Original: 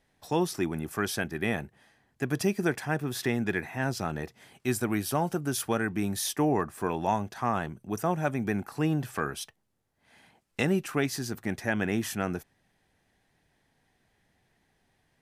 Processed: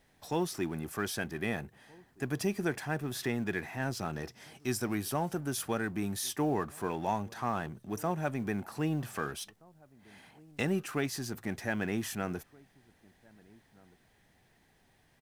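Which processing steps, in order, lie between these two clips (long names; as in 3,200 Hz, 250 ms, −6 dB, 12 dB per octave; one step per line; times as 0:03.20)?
mu-law and A-law mismatch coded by mu
0:04.13–0:04.95: parametric band 5,400 Hz +9 dB 0.31 octaves
slap from a distant wall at 270 metres, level −25 dB
level −5.5 dB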